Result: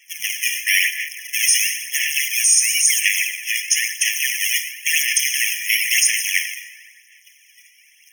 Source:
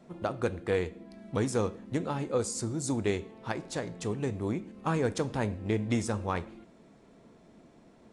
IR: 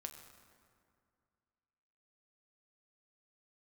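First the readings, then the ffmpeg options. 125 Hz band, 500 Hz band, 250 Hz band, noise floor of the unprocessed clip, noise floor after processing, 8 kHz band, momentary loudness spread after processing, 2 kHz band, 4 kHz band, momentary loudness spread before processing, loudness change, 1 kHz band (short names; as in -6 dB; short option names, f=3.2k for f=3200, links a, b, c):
under -40 dB, under -40 dB, under -40 dB, -58 dBFS, -53 dBFS, +25.5 dB, 8 LU, +23.0 dB, +25.0 dB, 7 LU, +15.5 dB, under -40 dB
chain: -filter_complex "[0:a]acrossover=split=440[a][b];[a]acrusher=samples=33:mix=1:aa=0.000001:lfo=1:lforange=33:lforate=1[c];[c][b]amix=inputs=2:normalize=0,highshelf=f=9.3k:g=-2.5,agate=range=-6dB:threshold=-55dB:ratio=16:detection=peak[d];[1:a]atrim=start_sample=2205[e];[d][e]afir=irnorm=-1:irlink=0,aexciter=amount=2.1:drive=3.9:freq=2.1k,aphaser=in_gain=1:out_gain=1:delay=2.1:decay=0.54:speed=0.98:type=sinusoidal,tiltshelf=f=790:g=-9.5,asplit=2[f][g];[g]acrusher=bits=5:mix=0:aa=0.000001,volume=-6dB[h];[f][h]amix=inputs=2:normalize=0,alimiter=level_in=14dB:limit=-1dB:release=50:level=0:latency=1,afftfilt=real='re*eq(mod(floor(b*sr/1024/1700),2),1)':imag='im*eq(mod(floor(b*sr/1024/1700),2),1)':win_size=1024:overlap=0.75"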